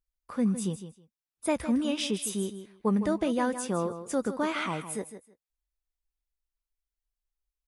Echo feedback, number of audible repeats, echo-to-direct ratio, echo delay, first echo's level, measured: 17%, 2, -11.0 dB, 159 ms, -11.0 dB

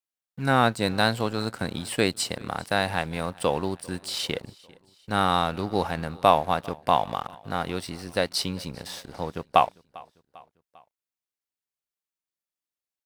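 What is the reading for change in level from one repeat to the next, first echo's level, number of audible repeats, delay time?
-5.5 dB, -24.0 dB, 2, 398 ms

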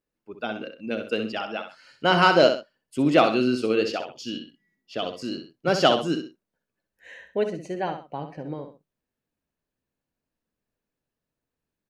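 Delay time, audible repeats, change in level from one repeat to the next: 64 ms, 2, -10.0 dB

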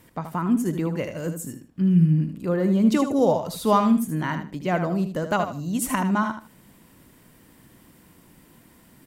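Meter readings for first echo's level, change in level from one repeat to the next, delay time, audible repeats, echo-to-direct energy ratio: -8.5 dB, -13.0 dB, 77 ms, 3, -8.5 dB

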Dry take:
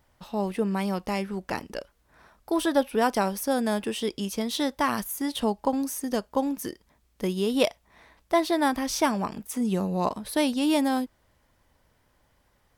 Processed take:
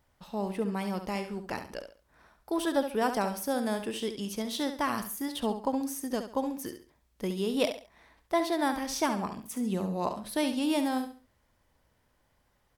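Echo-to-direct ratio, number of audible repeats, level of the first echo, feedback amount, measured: -8.5 dB, 3, -9.0 dB, 29%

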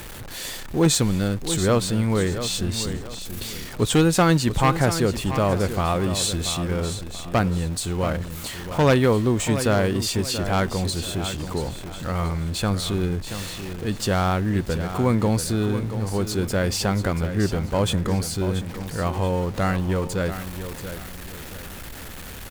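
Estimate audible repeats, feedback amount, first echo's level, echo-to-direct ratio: 3, 33%, -10.5 dB, -10.0 dB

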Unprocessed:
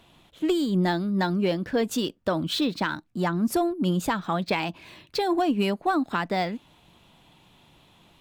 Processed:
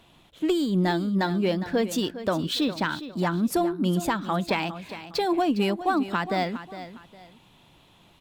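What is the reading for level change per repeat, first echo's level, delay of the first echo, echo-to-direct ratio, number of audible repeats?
-10.5 dB, -13.0 dB, 408 ms, -12.5 dB, 2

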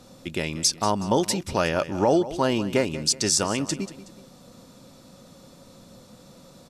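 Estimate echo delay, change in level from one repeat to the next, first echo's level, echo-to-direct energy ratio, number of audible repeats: 185 ms, -8.0 dB, -15.0 dB, -14.5 dB, 2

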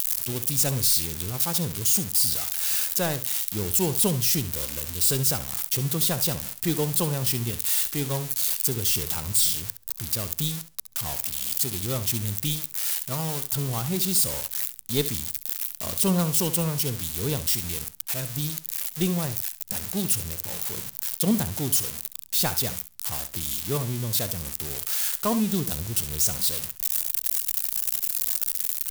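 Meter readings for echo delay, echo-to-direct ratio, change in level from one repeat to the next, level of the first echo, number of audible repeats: 68 ms, -13.0 dB, -15.5 dB, -13.0 dB, 2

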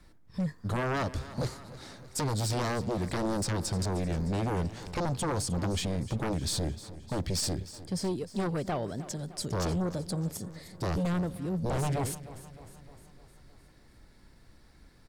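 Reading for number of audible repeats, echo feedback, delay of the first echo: 5, 58%, 306 ms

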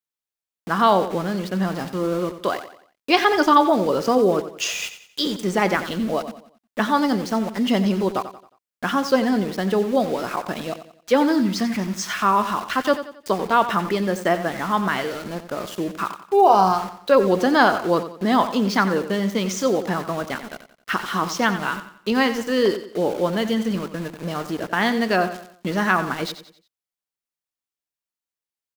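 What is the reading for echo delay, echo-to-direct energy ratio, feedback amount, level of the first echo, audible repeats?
90 ms, -11.5 dB, 39%, -12.0 dB, 3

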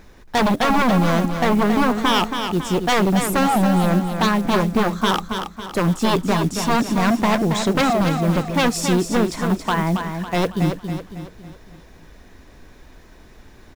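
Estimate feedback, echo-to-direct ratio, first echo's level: 45%, -6.0 dB, -7.0 dB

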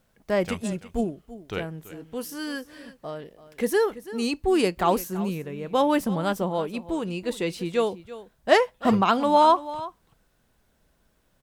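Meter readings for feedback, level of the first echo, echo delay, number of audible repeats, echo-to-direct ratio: no regular repeats, -16.0 dB, 334 ms, 1, -16.0 dB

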